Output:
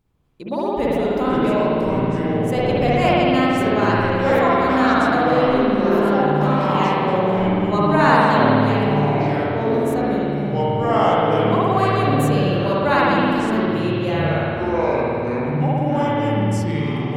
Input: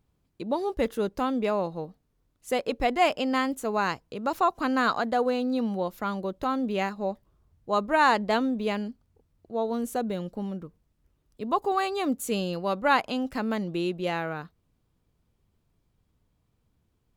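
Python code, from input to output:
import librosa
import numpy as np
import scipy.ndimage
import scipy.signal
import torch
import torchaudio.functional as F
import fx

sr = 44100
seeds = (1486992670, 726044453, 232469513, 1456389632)

y = fx.echo_pitch(x, sr, ms=235, semitones=-5, count=3, db_per_echo=-3.0)
y = fx.rev_spring(y, sr, rt60_s=2.5, pass_ms=(54,), chirp_ms=30, drr_db=-7.0)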